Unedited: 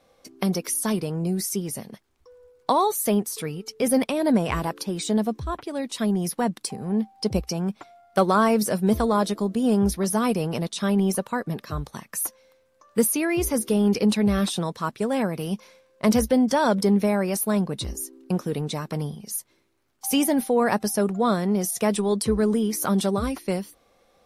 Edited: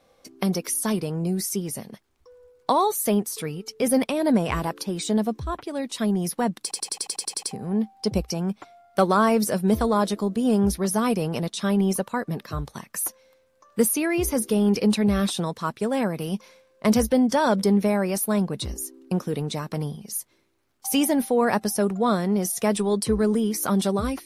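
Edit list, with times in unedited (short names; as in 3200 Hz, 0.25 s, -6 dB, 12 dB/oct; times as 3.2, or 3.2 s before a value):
6.62 stutter 0.09 s, 10 plays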